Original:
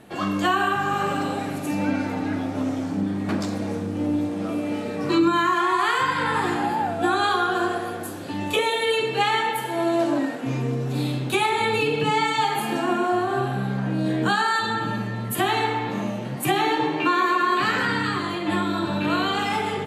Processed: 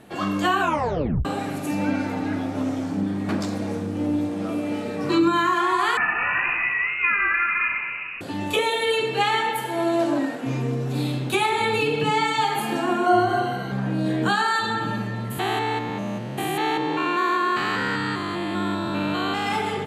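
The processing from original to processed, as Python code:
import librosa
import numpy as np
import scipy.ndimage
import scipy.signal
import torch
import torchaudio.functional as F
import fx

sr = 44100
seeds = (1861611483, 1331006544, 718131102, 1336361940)

y = fx.freq_invert(x, sr, carrier_hz=2800, at=(5.97, 8.21))
y = fx.ripple_eq(y, sr, per_octave=1.9, db=16, at=(13.06, 13.72))
y = fx.spec_steps(y, sr, hold_ms=200, at=(15.3, 19.45), fade=0.02)
y = fx.edit(y, sr, fx.tape_stop(start_s=0.6, length_s=0.65), tone=tone)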